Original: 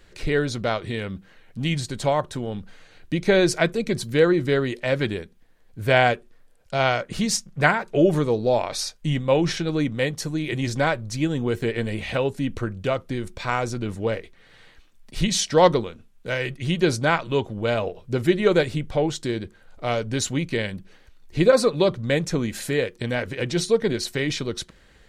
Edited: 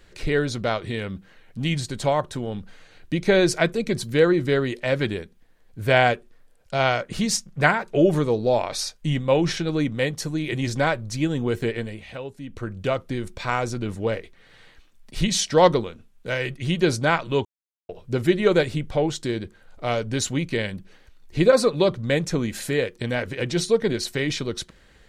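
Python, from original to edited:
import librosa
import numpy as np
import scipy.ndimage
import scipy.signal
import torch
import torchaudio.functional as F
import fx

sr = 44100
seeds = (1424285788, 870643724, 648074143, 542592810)

y = fx.edit(x, sr, fx.fade_down_up(start_s=11.66, length_s=1.15, db=-11.0, fade_s=0.34),
    fx.silence(start_s=17.45, length_s=0.44), tone=tone)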